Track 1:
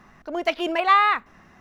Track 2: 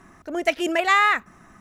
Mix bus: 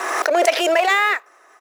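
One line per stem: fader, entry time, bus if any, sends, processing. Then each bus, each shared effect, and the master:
+3.0 dB, 0.00 s, no send, median filter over 41 samples; notch 2900 Hz
+1.0 dB, 0.4 ms, polarity flipped, no send, dry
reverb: off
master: steep high-pass 420 Hz 36 dB/oct; bell 5200 Hz +2 dB 0.28 oct; backwards sustainer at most 29 dB/s

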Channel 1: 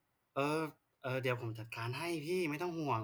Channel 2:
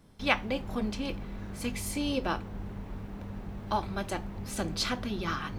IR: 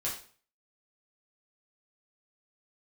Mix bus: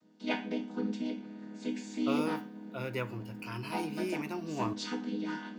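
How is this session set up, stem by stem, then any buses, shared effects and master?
-1.0 dB, 1.70 s, send -17.5 dB, dry
-7.0 dB, 0.00 s, send -4 dB, chord vocoder minor triad, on G#3; high shelf 3100 Hz +9 dB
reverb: on, RT60 0.45 s, pre-delay 4 ms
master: dry

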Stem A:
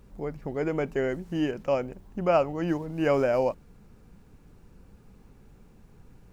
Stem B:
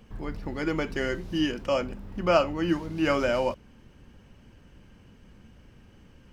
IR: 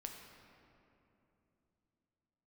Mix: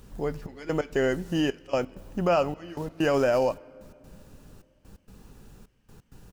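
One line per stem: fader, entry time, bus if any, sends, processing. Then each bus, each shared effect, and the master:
+2.5 dB, 0.00 s, send -16.5 dB, notch 2200 Hz, Q 5.9; limiter -19 dBFS, peak gain reduction 7.5 dB; step gate "xxxx..x.x" 130 bpm -24 dB
-11.5 dB, 8.2 ms, send -10.5 dB, auto duck -10 dB, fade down 1.45 s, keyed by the first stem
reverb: on, RT60 3.0 s, pre-delay 7 ms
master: high shelf 2300 Hz +8.5 dB

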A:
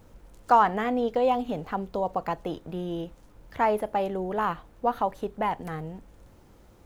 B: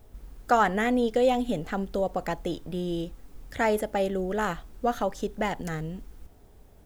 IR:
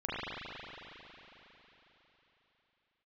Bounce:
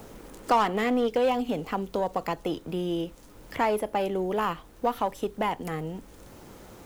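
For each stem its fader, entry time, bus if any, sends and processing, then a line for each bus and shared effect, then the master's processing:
-1.5 dB, 0.00 s, no send, high shelf 2800 Hz +9 dB
+0.5 dB, 0.00 s, no send, Chebyshev high-pass 280 Hz, order 2; AGC gain up to 5.5 dB; hard clip -20 dBFS, distortion -8 dB; auto duck -14 dB, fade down 1.75 s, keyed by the first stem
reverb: off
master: three-band squash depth 40%

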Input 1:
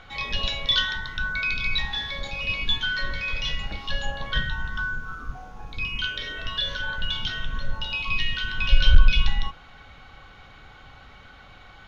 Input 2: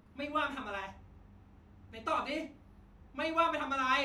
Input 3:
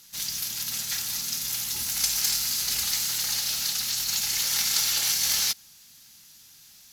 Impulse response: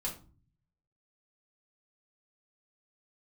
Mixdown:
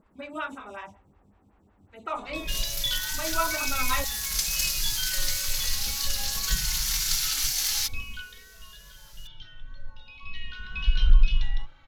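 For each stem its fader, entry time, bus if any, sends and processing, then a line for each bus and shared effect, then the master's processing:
7.98 s -4.5 dB -> 8.45 s -16.5 dB -> 10.1 s -16.5 dB -> 10.78 s -7 dB, 2.15 s, no send, low shelf 62 Hz +8 dB; endless flanger 2.4 ms -0.46 Hz
+2.0 dB, 0.00 s, no send, bell 7800 Hz +13 dB 0.21 oct; photocell phaser 5.4 Hz
-2.5 dB, 2.35 s, no send, HPF 1000 Hz 12 dB/oct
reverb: off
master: wow and flutter 25 cents

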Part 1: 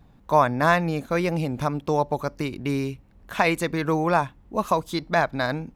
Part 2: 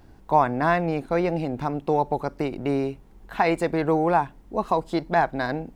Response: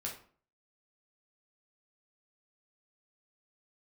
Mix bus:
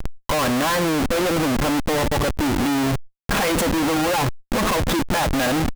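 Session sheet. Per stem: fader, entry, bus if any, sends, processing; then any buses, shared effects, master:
+1.5 dB, 0.00 s, send -21 dB, limiter -12 dBFS, peak gain reduction 6.5 dB; auto duck -7 dB, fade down 1.20 s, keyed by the second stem
-8.5 dB, 3.8 ms, no send, upward compressor, threshold -38 dBFS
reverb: on, RT60 0.45 s, pre-delay 8 ms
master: sample leveller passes 3; Schmitt trigger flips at -29 dBFS; sustainer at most 140 dB/s

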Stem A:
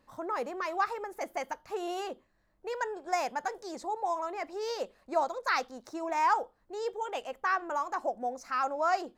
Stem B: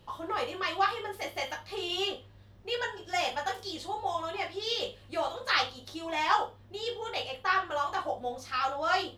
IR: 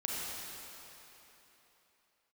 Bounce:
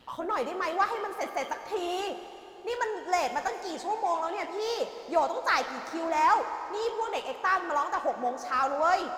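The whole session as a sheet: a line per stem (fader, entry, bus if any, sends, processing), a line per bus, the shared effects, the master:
+1.0 dB, 0.00 s, send -10.5 dB, HPF 120 Hz
-11.0 dB, 0.00 s, polarity flipped, send -20 dB, reverb removal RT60 1.5 s; overdrive pedal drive 27 dB, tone 4300 Hz, clips at -12.5 dBFS; ring modulator 64 Hz; auto duck -10 dB, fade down 0.40 s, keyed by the first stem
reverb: on, RT60 3.5 s, pre-delay 31 ms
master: low shelf 84 Hz +7.5 dB

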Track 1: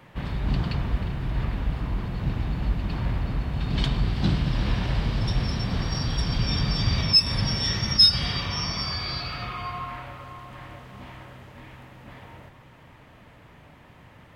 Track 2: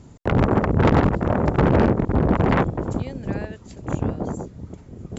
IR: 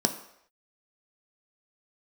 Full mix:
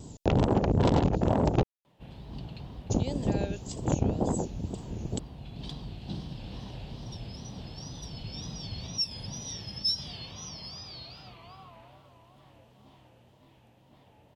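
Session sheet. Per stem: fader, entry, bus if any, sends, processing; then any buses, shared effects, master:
-12.0 dB, 1.85 s, no send, low shelf 64 Hz -11.5 dB
+0.5 dB, 0.00 s, muted 1.63–2.9, no send, high shelf 2700 Hz +9 dB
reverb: off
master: band shelf 1600 Hz -10.5 dB 1.3 oct; wow and flutter 130 cents; compressor 3:1, threshold -22 dBFS, peak gain reduction 8 dB

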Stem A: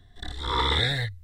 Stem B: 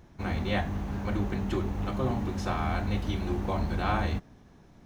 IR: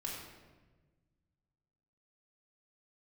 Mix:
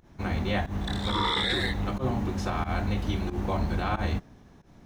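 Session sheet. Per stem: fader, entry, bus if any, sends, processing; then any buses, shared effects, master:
+2.5 dB, 0.65 s, send -15.5 dB, HPF 350 Hz
+2.0 dB, 0.00 s, no send, pump 91 bpm, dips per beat 1, -18 dB, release 0.114 s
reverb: on, RT60 1.3 s, pre-delay 3 ms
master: limiter -17.5 dBFS, peak gain reduction 9.5 dB

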